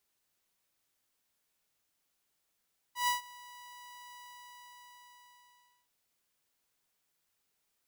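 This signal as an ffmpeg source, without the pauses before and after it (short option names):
-f lavfi -i "aevalsrc='0.0668*(2*mod(979*t,1)-1)':d=2.94:s=44100,afade=t=in:d=0.128,afade=t=out:st=0.128:d=0.132:silence=0.0708,afade=t=out:st=1.21:d=1.73"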